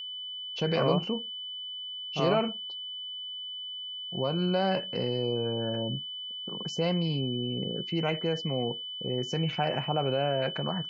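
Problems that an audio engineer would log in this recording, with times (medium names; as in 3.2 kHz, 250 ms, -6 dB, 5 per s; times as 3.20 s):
whine 3 kHz -36 dBFS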